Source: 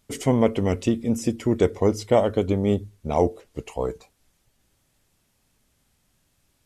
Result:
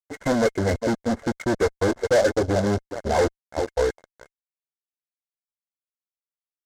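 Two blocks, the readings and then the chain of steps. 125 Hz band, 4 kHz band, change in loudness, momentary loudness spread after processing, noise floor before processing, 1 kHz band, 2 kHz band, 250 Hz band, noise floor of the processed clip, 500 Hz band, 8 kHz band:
-2.5 dB, +3.5 dB, 0.0 dB, 6 LU, -69 dBFS, +1.5 dB, +9.5 dB, -2.5 dB, under -85 dBFS, +1.0 dB, +2.0 dB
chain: expander on every frequency bin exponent 1.5; peaking EQ 1.3 kHz -4.5 dB 0.24 oct; band-stop 420 Hz, Q 12; on a send: feedback delay 404 ms, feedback 34%, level -16 dB; on the sum: reverb removal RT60 0.51 s; loudest bins only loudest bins 32; fifteen-band graphic EQ 160 Hz -12 dB, 630 Hz -3 dB, 1.6 kHz +7 dB; fuzz box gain 37 dB, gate -43 dBFS; rippled Chebyshev low-pass 2.2 kHz, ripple 9 dB; delay time shaken by noise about 4.6 kHz, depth 0.032 ms

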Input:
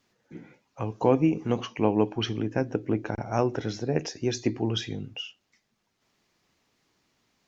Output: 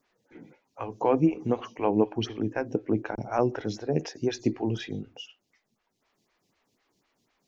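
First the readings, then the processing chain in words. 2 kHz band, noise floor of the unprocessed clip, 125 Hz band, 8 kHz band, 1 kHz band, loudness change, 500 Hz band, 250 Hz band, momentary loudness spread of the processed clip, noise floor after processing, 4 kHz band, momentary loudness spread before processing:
-1.5 dB, -76 dBFS, -3.0 dB, no reading, +0.5 dB, -0.5 dB, -0.5 dB, -0.5 dB, 14 LU, -78 dBFS, -5.5 dB, 13 LU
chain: lamp-driven phase shifter 4 Hz; trim +1.5 dB

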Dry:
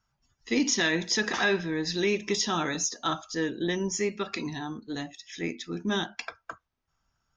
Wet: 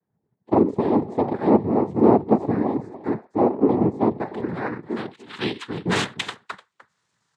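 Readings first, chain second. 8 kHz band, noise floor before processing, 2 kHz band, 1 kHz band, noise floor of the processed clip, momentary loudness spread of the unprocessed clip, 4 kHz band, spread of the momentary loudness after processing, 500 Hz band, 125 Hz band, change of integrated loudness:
under -10 dB, -80 dBFS, -3.5 dB, +9.5 dB, -76 dBFS, 12 LU, -3.5 dB, 13 LU, +9.5 dB, +9.0 dB, +6.5 dB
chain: low-pass sweep 440 Hz -> 4.3 kHz, 3.69–6.53 s; delay 299 ms -17 dB; noise-vocoded speech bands 6; trim +5.5 dB

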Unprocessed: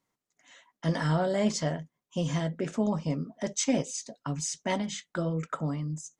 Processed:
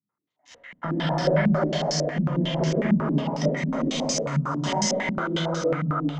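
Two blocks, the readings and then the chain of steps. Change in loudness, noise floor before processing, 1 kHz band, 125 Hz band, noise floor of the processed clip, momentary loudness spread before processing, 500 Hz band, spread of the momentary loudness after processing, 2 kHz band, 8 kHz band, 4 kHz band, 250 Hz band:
+6.0 dB, under -85 dBFS, +7.5 dB, +6.0 dB, under -85 dBFS, 7 LU, +7.0 dB, 4 LU, +8.0 dB, +2.5 dB, +8.5 dB, +6.0 dB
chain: fade out at the end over 1.57 s; high-pass 80 Hz 24 dB/octave; spectral noise reduction 7 dB; waveshaping leveller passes 2; compression 5:1, threshold -32 dBFS, peak gain reduction 12.5 dB; thinning echo 276 ms, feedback 58%, level -11 dB; gated-style reverb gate 480 ms flat, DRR -7.5 dB; step-sequenced low-pass 11 Hz 200–5400 Hz

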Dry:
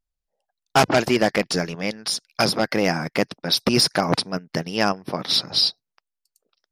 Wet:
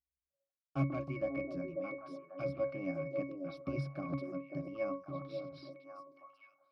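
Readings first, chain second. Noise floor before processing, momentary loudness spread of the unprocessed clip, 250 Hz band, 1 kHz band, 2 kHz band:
-84 dBFS, 9 LU, -15.0 dB, -23.5 dB, -23.0 dB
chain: pitch-class resonator C#, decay 0.31 s; repeats whose band climbs or falls 541 ms, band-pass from 410 Hz, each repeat 1.4 oct, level -2 dB; trim -1.5 dB

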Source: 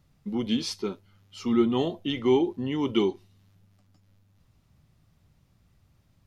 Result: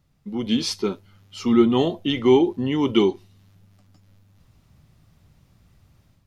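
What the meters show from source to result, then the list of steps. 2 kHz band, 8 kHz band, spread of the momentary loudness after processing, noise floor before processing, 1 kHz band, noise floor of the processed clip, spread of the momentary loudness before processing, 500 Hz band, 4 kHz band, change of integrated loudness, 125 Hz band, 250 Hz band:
+6.0 dB, no reading, 12 LU, -65 dBFS, +6.0 dB, -62 dBFS, 11 LU, +6.0 dB, +6.0 dB, +6.0 dB, +6.0 dB, +6.0 dB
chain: level rider gain up to 8.5 dB; trim -1.5 dB

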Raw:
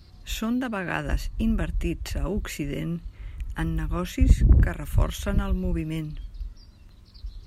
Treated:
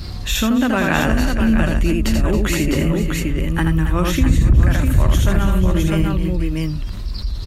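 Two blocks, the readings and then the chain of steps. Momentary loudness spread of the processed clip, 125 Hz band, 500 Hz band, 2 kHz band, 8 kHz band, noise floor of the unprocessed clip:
7 LU, +9.0 dB, +11.5 dB, +11.5 dB, +12.5 dB, -50 dBFS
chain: on a send: multi-tap echo 81/271/296/485/653 ms -4/-12/-19/-12.5/-5.5 dB; on the sum: level flattener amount 50%; trim +1.5 dB

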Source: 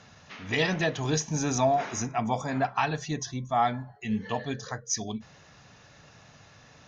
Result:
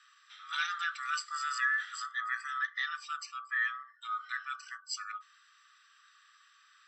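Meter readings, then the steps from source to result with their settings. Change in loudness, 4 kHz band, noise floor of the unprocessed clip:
-6.0 dB, -4.5 dB, -55 dBFS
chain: split-band scrambler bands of 1 kHz; elliptic high-pass 1.3 kHz, stop band 60 dB; tilt EQ -1.5 dB/octave; trim -4.5 dB

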